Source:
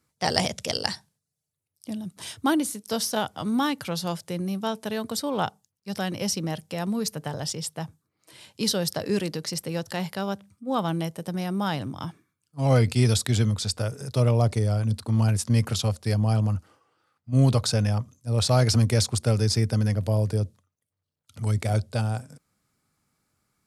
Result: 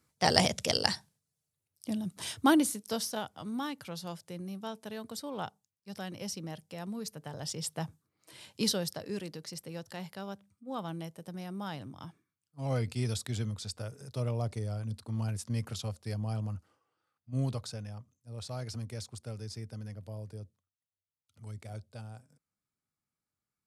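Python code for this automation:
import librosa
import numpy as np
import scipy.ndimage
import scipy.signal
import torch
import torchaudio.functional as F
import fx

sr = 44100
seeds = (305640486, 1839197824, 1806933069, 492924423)

y = fx.gain(x, sr, db=fx.line((2.62, -1.0), (3.29, -11.5), (7.25, -11.5), (7.72, -3.0), (8.61, -3.0), (9.03, -12.0), (17.39, -12.0), (17.85, -19.0)))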